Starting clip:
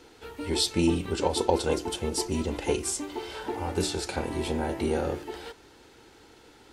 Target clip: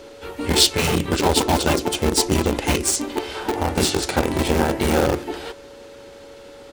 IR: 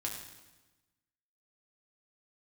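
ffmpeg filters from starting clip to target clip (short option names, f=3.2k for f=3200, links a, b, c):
-filter_complex "[0:a]aeval=exprs='val(0)+0.00355*sin(2*PI*560*n/s)':c=same,asplit=3[a][b][c];[b]asetrate=35002,aresample=44100,atempo=1.25992,volume=-9dB[d];[c]asetrate=37084,aresample=44100,atempo=1.18921,volume=-10dB[e];[a][d][e]amix=inputs=3:normalize=0,asplit=2[f][g];[g]acrusher=bits=3:mix=0:aa=0.000001,volume=-7dB[h];[f][h]amix=inputs=2:normalize=0,afftfilt=real='re*lt(hypot(re,im),0.501)':imag='im*lt(hypot(re,im),0.501)':win_size=1024:overlap=0.75,volume=7.5dB"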